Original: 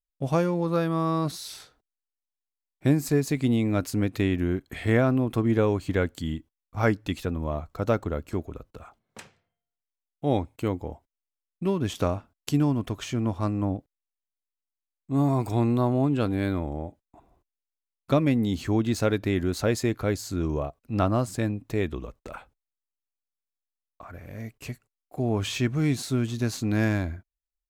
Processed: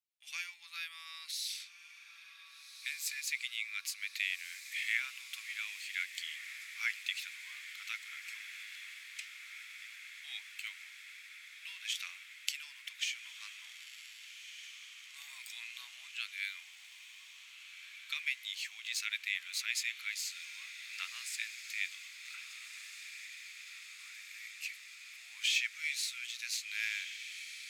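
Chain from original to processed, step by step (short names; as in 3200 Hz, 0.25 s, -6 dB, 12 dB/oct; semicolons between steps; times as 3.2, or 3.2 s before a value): elliptic high-pass 2200 Hz, stop band 80 dB; high shelf 2800 Hz -12 dB; on a send: diffused feedback echo 1.573 s, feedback 75%, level -10 dB; on the sum: gain +9.5 dB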